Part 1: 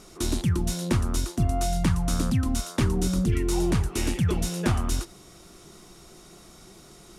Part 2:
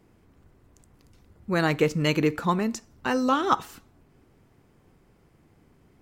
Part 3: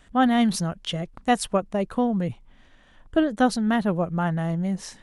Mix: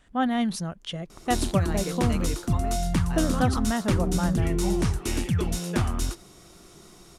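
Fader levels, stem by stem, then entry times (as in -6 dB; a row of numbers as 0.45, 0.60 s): -1.0, -13.0, -5.0 dB; 1.10, 0.05, 0.00 s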